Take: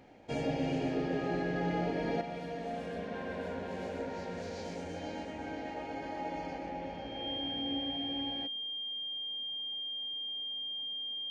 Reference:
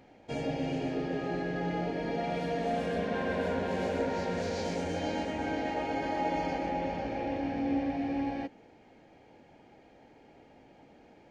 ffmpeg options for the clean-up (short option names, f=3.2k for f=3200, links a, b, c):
-af "bandreject=f=3.2k:w=30,asetnsamples=n=441:p=0,asendcmd='2.21 volume volume 7.5dB',volume=0dB"